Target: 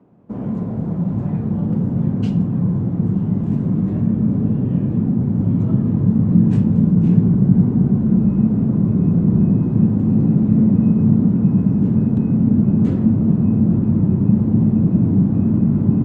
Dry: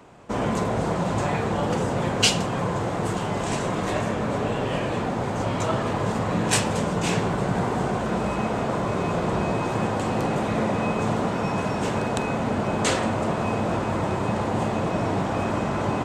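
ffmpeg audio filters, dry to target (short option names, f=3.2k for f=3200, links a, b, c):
-af "acrusher=bits=5:mode=log:mix=0:aa=0.000001,asubboost=boost=7.5:cutoff=220,bandpass=f=210:t=q:w=1.6:csg=0,volume=3.5dB"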